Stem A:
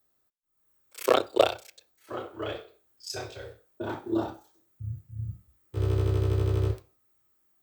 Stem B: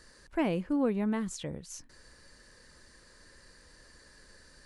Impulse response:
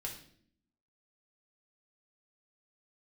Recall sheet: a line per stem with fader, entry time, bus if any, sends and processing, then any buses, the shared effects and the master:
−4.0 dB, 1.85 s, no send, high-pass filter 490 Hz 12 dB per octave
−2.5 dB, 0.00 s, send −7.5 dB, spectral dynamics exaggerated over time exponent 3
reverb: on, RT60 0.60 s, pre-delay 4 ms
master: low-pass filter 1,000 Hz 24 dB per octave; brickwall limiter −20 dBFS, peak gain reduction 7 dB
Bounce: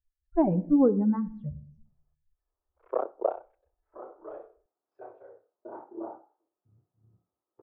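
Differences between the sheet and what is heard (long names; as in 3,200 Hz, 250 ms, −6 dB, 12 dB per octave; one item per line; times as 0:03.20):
stem B −2.5 dB → +8.0 dB
master: missing brickwall limiter −20 dBFS, peak gain reduction 7 dB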